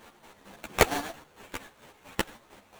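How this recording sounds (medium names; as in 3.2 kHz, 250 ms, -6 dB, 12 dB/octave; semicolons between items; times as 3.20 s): a buzz of ramps at a fixed pitch in blocks of 8 samples; chopped level 4.4 Hz, depth 60%, duty 40%; aliases and images of a low sample rate 5.1 kHz, jitter 20%; a shimmering, thickened sound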